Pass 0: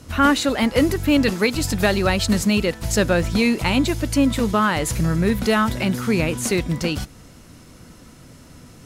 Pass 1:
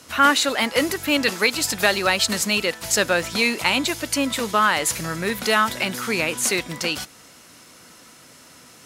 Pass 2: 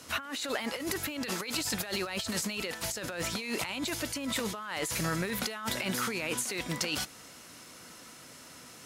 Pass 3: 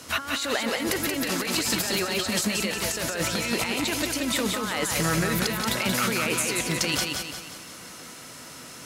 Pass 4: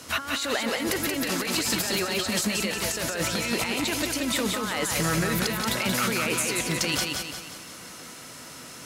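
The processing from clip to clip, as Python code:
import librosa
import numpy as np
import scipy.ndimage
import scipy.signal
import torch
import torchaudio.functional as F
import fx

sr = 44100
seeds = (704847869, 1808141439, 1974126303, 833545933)

y1 = fx.highpass(x, sr, hz=1000.0, slope=6)
y1 = y1 * 10.0 ** (4.5 / 20.0)
y2 = fx.over_compress(y1, sr, threshold_db=-27.0, ratio=-1.0)
y2 = y2 * 10.0 ** (-7.5 / 20.0)
y3 = fx.echo_feedback(y2, sr, ms=179, feedback_pct=46, wet_db=-4)
y3 = y3 * 10.0 ** (6.0 / 20.0)
y4 = 10.0 ** (-12.5 / 20.0) * np.tanh(y3 / 10.0 ** (-12.5 / 20.0))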